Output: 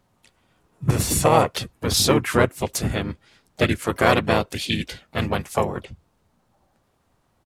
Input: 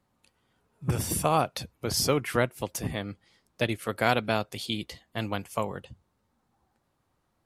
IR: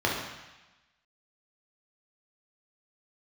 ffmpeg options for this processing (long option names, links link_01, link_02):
-filter_complex "[0:a]acontrast=40,asplit=4[link_01][link_02][link_03][link_04];[link_02]asetrate=33038,aresample=44100,atempo=1.33484,volume=-2dB[link_05];[link_03]asetrate=37084,aresample=44100,atempo=1.18921,volume=-10dB[link_06];[link_04]asetrate=55563,aresample=44100,atempo=0.793701,volume=-17dB[link_07];[link_01][link_05][link_06][link_07]amix=inputs=4:normalize=0"